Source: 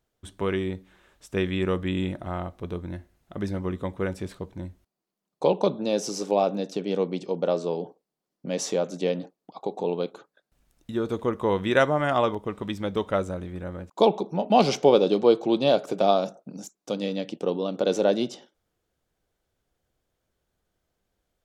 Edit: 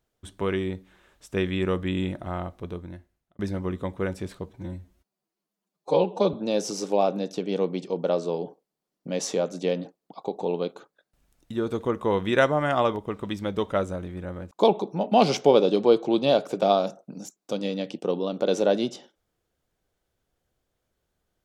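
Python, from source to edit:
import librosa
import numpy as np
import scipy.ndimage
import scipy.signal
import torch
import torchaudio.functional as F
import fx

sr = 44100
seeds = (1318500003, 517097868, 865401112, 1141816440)

y = fx.edit(x, sr, fx.fade_out_span(start_s=2.53, length_s=0.86),
    fx.stretch_span(start_s=4.49, length_s=1.23, factor=1.5), tone=tone)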